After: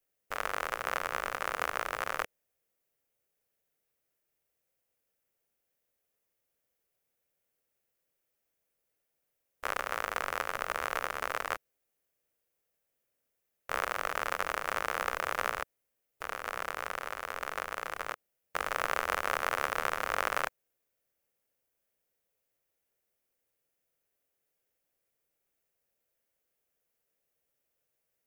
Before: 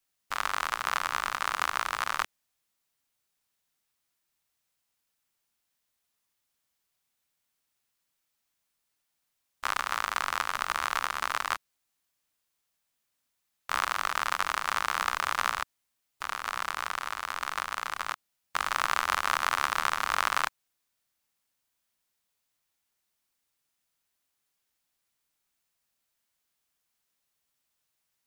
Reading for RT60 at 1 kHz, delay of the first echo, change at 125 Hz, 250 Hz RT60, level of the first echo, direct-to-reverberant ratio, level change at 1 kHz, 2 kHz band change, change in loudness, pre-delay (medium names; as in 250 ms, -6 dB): no reverb, no echo, 0.0 dB, no reverb, no echo, no reverb, -5.0 dB, -3.5 dB, -4.0 dB, no reverb